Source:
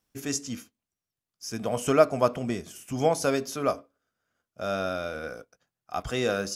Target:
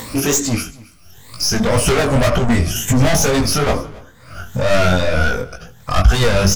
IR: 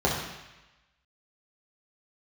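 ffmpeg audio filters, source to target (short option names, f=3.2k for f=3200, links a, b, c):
-filter_complex "[0:a]afftfilt=real='re*pow(10,13/40*sin(2*PI*(1*log(max(b,1)*sr/1024/100)/log(2)-(2.4)*(pts-256)/sr)))':imag='im*pow(10,13/40*sin(2*PI*(1*log(max(b,1)*sr/1024/100)/log(2)-(2.4)*(pts-256)/sr)))':win_size=1024:overlap=0.75,highshelf=f=5.9k:g=-3.5,acompressor=mode=upward:threshold=-31dB:ratio=2.5,asplit=2[a][b];[b]asplit=3[c][d][e];[c]adelay=80,afreqshift=-38,volume=-21.5dB[f];[d]adelay=160,afreqshift=-76,volume=-28.8dB[g];[e]adelay=240,afreqshift=-114,volume=-36.2dB[h];[f][g][h]amix=inputs=3:normalize=0[i];[a][i]amix=inputs=2:normalize=0,aeval=exprs='(tanh(44.7*val(0)+0.1)-tanh(0.1))/44.7':c=same,flanger=delay=17:depth=5.2:speed=2.1,asplit=2[j][k];[k]aecho=0:1:275:0.075[l];[j][l]amix=inputs=2:normalize=0,asubboost=boost=7.5:cutoff=120,alimiter=level_in=24.5dB:limit=-1dB:release=50:level=0:latency=1,volume=-1dB"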